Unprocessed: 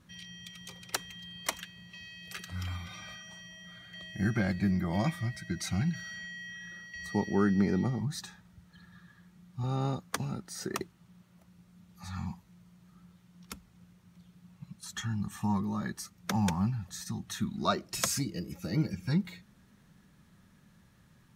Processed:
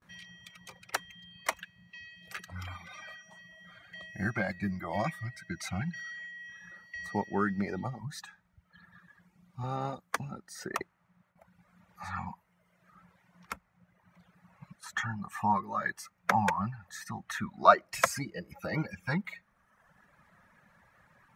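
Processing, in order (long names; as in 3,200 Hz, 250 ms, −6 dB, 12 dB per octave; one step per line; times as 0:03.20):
noise gate with hold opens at −53 dBFS
reverb reduction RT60 1.2 s
flat-topped bell 1,100 Hz +8 dB 2.5 octaves, from 0:10.77 +14.5 dB
level −4 dB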